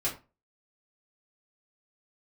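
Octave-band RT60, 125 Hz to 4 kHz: 0.35 s, 0.30 s, 0.30 s, 0.30 s, 0.25 s, 0.20 s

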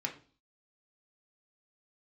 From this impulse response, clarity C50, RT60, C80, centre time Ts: 11.5 dB, 0.40 s, 17.0 dB, 14 ms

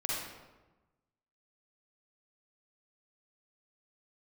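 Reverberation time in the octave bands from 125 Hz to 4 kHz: 1.4 s, 1.3 s, 1.2 s, 1.1 s, 0.90 s, 0.75 s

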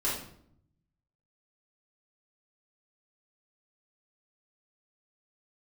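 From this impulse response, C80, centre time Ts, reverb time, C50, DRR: 7.5 dB, 44 ms, 0.65 s, 3.0 dB, -8.0 dB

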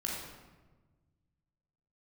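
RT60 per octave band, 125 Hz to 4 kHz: 2.3 s, 1.8 s, 1.4 s, 1.2 s, 1.0 s, 0.80 s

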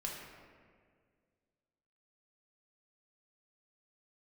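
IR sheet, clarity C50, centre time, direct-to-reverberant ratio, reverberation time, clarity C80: 1.5 dB, 79 ms, -2.5 dB, 1.9 s, 3.5 dB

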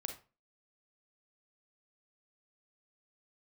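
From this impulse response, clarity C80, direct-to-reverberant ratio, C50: 15.5 dB, 5.0 dB, 8.0 dB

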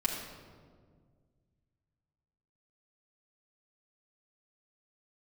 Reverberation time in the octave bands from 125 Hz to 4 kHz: 2.9 s, 2.4 s, 2.1 s, 1.6 s, 1.2 s, 1.0 s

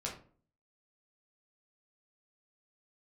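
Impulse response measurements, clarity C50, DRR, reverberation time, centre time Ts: 8.0 dB, -3.5 dB, 0.45 s, 24 ms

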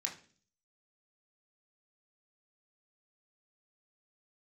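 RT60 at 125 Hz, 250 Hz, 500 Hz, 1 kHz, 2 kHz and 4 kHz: 0.70 s, 0.65 s, 0.50 s, 0.35 s, 0.40 s, 0.50 s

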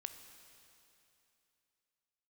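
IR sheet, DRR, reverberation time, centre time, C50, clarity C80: 7.5 dB, 2.9 s, 32 ms, 8.5 dB, 9.5 dB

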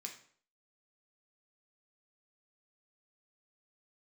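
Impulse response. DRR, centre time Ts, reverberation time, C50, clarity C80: 1.5 dB, 18 ms, 0.55 s, 8.5 dB, 13.0 dB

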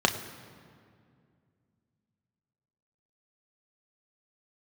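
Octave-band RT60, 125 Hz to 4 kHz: 3.3 s, 3.1 s, 2.4 s, 2.1 s, 1.8 s, 1.4 s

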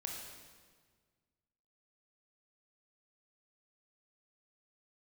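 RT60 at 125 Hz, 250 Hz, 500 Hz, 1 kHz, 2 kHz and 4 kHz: 2.1 s, 1.9 s, 1.7 s, 1.5 s, 1.4 s, 1.4 s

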